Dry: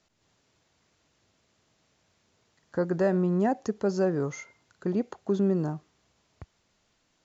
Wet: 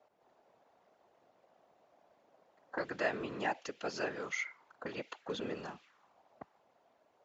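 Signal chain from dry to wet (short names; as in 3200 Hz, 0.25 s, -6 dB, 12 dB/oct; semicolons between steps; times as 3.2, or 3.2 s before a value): whisperiser; auto-wah 660–2800 Hz, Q 2.3, up, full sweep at -30.5 dBFS; gain +10.5 dB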